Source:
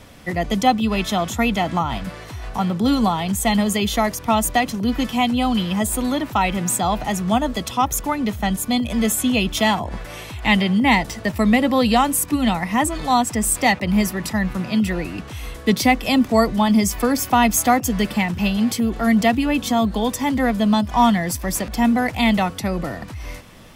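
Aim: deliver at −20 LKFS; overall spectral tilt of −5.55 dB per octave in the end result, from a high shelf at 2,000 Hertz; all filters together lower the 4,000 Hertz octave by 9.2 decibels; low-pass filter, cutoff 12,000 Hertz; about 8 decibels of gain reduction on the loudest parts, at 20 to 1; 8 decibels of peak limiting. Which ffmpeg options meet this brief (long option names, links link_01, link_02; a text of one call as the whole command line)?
ffmpeg -i in.wav -af "lowpass=12000,highshelf=frequency=2000:gain=-5.5,equalizer=frequency=4000:width_type=o:gain=-7,acompressor=threshold=-19dB:ratio=20,volume=6dB,alimiter=limit=-10.5dB:level=0:latency=1" out.wav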